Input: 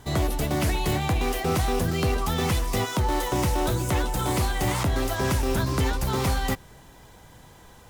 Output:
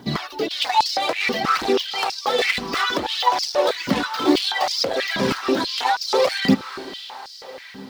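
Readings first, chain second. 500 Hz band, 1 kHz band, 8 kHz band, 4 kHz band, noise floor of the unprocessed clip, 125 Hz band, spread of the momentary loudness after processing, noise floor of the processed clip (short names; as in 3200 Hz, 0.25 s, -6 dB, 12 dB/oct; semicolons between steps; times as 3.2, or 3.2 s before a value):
+6.0 dB, +7.0 dB, -1.0 dB, +11.0 dB, -50 dBFS, -10.0 dB, 13 LU, -40 dBFS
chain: tracing distortion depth 0.21 ms; reverb removal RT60 1.5 s; resonant high shelf 6400 Hz -11.5 dB, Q 3; AGC gain up to 6 dB; hard clip -19 dBFS, distortion -12 dB; phaser 0.61 Hz, delay 4.7 ms, feedback 50%; bit-crush 10-bit; diffused feedback echo 0.501 s, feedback 59%, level -13 dB; stepped high-pass 6.2 Hz 210–5100 Hz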